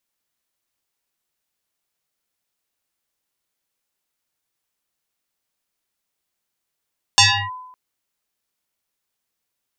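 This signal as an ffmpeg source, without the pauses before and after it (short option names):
-f lavfi -i "aevalsrc='0.473*pow(10,-3*t/0.91)*sin(2*PI*1010*t+7.1*clip(1-t/0.32,0,1)*sin(2*PI*0.9*1010*t))':d=0.56:s=44100"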